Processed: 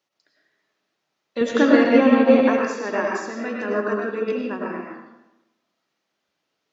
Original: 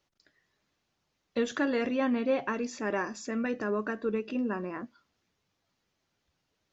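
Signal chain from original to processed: Bessel high-pass 260 Hz, order 2; 1.41–2.43 s: bass shelf 400 Hz +9 dB; reverberation RT60 0.95 s, pre-delay 60 ms, DRR -3 dB; upward expansion 1.5:1, over -38 dBFS; trim +9 dB

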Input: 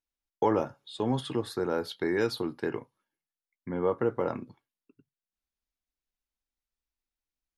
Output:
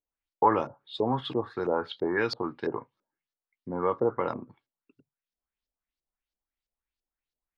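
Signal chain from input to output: dynamic bell 1.1 kHz, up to +7 dB, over -46 dBFS, Q 2; LFO low-pass saw up 3 Hz 480–5500 Hz; trim -2 dB

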